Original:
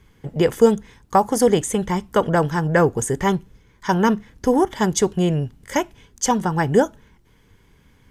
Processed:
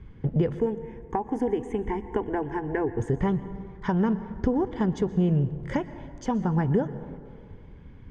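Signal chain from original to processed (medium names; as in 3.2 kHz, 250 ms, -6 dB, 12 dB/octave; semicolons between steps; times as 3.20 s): 0.59–3.00 s: static phaser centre 850 Hz, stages 8; compression 3:1, threshold -30 dBFS, peak gain reduction 14.5 dB; low-pass 2.8 kHz 12 dB/octave; bass shelf 420 Hz +12 dB; plate-style reverb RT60 2.1 s, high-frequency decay 0.45×, pre-delay 105 ms, DRR 13.5 dB; trim -2.5 dB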